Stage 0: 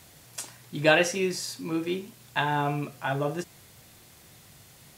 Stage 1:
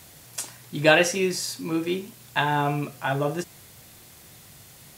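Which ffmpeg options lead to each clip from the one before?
-af "highshelf=f=8400:g=4,volume=1.41"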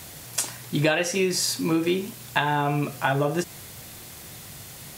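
-af "acompressor=threshold=0.0501:ratio=8,volume=2.24"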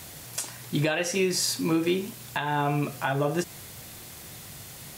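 -af "alimiter=limit=0.266:level=0:latency=1:release=232,volume=0.841"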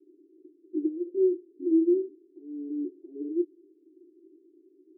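-af "asuperpass=centerf=340:order=8:qfactor=3.4,volume=1.5"

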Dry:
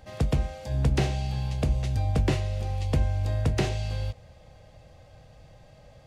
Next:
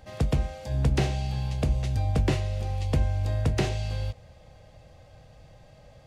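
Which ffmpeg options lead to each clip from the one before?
-af anull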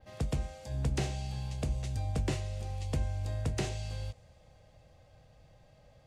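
-af "adynamicequalizer=threshold=0.00126:dfrequency=8000:dqfactor=1:tfrequency=8000:tqfactor=1:attack=5:release=100:ratio=0.375:range=4:mode=boostabove:tftype=bell,volume=0.398"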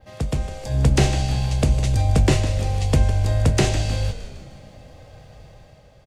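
-filter_complex "[0:a]dynaudnorm=f=110:g=11:m=2.24,asplit=7[s0][s1][s2][s3][s4][s5][s6];[s1]adelay=155,afreqshift=-61,volume=0.266[s7];[s2]adelay=310,afreqshift=-122,volume=0.141[s8];[s3]adelay=465,afreqshift=-183,volume=0.075[s9];[s4]adelay=620,afreqshift=-244,volume=0.0398[s10];[s5]adelay=775,afreqshift=-305,volume=0.0209[s11];[s6]adelay=930,afreqshift=-366,volume=0.0111[s12];[s0][s7][s8][s9][s10][s11][s12]amix=inputs=7:normalize=0,volume=2.51"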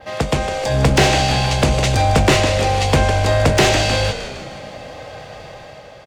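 -filter_complex "[0:a]asplit=2[s0][s1];[s1]highpass=f=720:p=1,volume=14.1,asoftclip=type=tanh:threshold=0.596[s2];[s0][s2]amix=inputs=2:normalize=0,lowpass=f=3000:p=1,volume=0.501,volume=1.19"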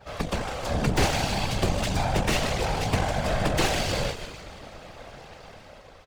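-af "aeval=exprs='max(val(0),0)':c=same,afftfilt=real='hypot(re,im)*cos(2*PI*random(0))':imag='hypot(re,im)*sin(2*PI*random(1))':win_size=512:overlap=0.75"

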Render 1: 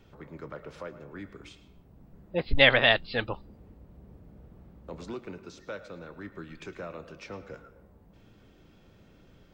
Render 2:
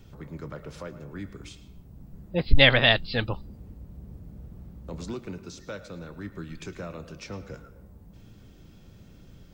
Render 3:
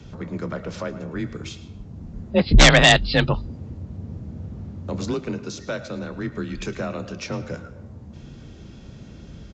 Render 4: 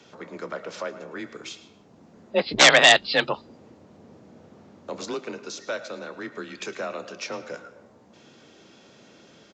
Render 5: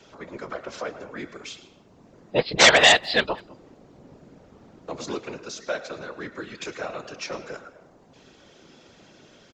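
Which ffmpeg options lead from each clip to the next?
-af "bass=f=250:g=9,treble=f=4000:g=10"
-af "afreqshift=28,aresample=16000,aeval=exprs='0.891*sin(PI/2*3.16*val(0)/0.891)':c=same,aresample=44100,volume=0.562"
-af "highpass=430"
-filter_complex "[0:a]asplit=2[s0][s1];[s1]adelay=200,highpass=300,lowpass=3400,asoftclip=type=hard:threshold=0.282,volume=0.0708[s2];[s0][s2]amix=inputs=2:normalize=0,afftfilt=real='hypot(re,im)*cos(2*PI*random(0))':imag='hypot(re,im)*sin(2*PI*random(1))':win_size=512:overlap=0.75,volume=2"

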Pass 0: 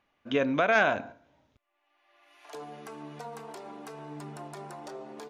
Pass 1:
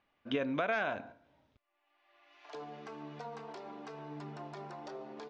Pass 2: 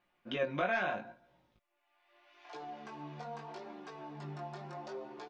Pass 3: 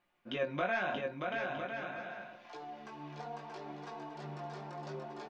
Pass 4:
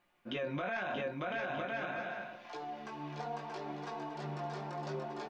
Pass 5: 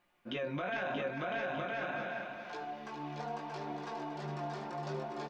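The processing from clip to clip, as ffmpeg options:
-af "lowpass=f=5500:w=0.5412,lowpass=f=5500:w=1.3066,alimiter=limit=0.112:level=0:latency=1:release=458,volume=0.708"
-af "aecho=1:1:5.6:0.54,flanger=delay=16:depth=5.8:speed=0.77,volume=1.26"
-af "aecho=1:1:630|1008|1235|1371|1453:0.631|0.398|0.251|0.158|0.1,volume=0.891"
-af "alimiter=level_in=2.66:limit=0.0631:level=0:latency=1:release=17,volume=0.376,volume=1.5"
-af "aecho=1:1:411:0.422"

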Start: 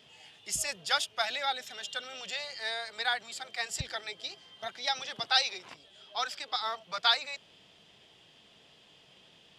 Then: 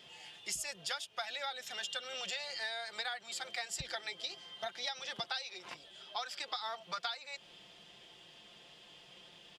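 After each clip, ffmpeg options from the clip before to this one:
-af "equalizer=f=140:t=o:w=1.9:g=-4,aecho=1:1:5.7:0.41,acompressor=threshold=0.0141:ratio=16,volume=1.19"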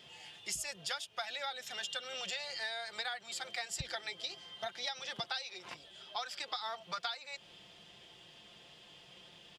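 -af "equalizer=f=88:w=0.98:g=6"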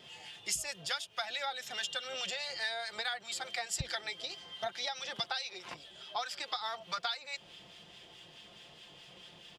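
-filter_complex "[0:a]acrossover=split=1300[s0][s1];[s0]aeval=exprs='val(0)*(1-0.5/2+0.5/2*cos(2*PI*4.7*n/s))':c=same[s2];[s1]aeval=exprs='val(0)*(1-0.5/2-0.5/2*cos(2*PI*4.7*n/s))':c=same[s3];[s2][s3]amix=inputs=2:normalize=0,volume=1.78"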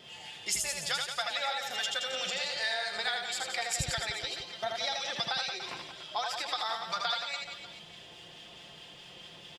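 -af "aecho=1:1:80|176|291.2|429.4|595.3:0.631|0.398|0.251|0.158|0.1,volume=1.33"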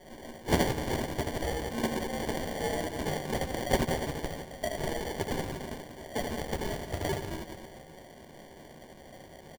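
-filter_complex "[0:a]aexciter=amount=2.3:drive=7.1:freq=6100,acrusher=samples=34:mix=1:aa=0.000001,asplit=2[s0][s1];[s1]adelay=13,volume=0.251[s2];[s0][s2]amix=inputs=2:normalize=0"

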